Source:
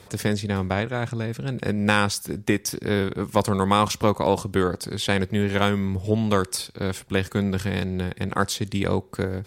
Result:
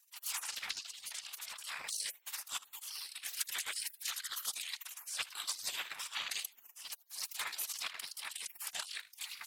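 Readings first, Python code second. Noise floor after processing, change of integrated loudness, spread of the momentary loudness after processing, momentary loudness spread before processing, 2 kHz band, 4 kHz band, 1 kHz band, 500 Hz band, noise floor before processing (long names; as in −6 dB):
−67 dBFS, −15.5 dB, 6 LU, 8 LU, −14.5 dB, −8.0 dB, −23.5 dB, −39.5 dB, −49 dBFS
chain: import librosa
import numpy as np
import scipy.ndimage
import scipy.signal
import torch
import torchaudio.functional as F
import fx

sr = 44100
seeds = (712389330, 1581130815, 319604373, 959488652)

p1 = fx.wow_flutter(x, sr, seeds[0], rate_hz=2.1, depth_cents=75.0)
p2 = fx.spec_repair(p1, sr, seeds[1], start_s=4.1, length_s=0.35, low_hz=820.0, high_hz=3100.0, source='after')
p3 = fx.highpass(p2, sr, hz=86.0, slope=6)
p4 = fx.transient(p3, sr, attack_db=-7, sustain_db=11)
p5 = p4 * np.sin(2.0 * np.pi * 190.0 * np.arange(len(p4)) / sr)
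p6 = p5 + fx.echo_feedback(p5, sr, ms=78, feedback_pct=30, wet_db=-9.5, dry=0)
p7 = fx.spec_gate(p6, sr, threshold_db=-30, keep='weak')
p8 = fx.whisperise(p7, sr, seeds[2])
p9 = fx.transient(p8, sr, attack_db=3, sustain_db=-11)
p10 = fx.low_shelf(p9, sr, hz=450.0, db=-9.5)
y = F.gain(torch.from_numpy(p10), 6.5).numpy()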